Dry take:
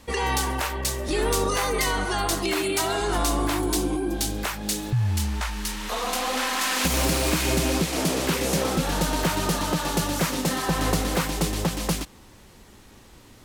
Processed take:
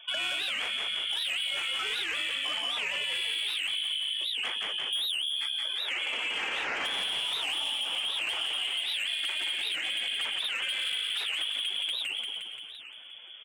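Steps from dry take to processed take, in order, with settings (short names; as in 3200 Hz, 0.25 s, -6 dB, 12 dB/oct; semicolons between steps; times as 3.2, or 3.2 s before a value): inverted band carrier 3400 Hz; HPF 300 Hz 12 dB/oct; spectral gate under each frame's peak -20 dB strong; soft clip -23 dBFS, distortion -12 dB; frequency-shifting echo 0.173 s, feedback 58%, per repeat -52 Hz, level -4 dB; compressor, threshold -29 dBFS, peak gain reduction 7.5 dB; record warp 78 rpm, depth 250 cents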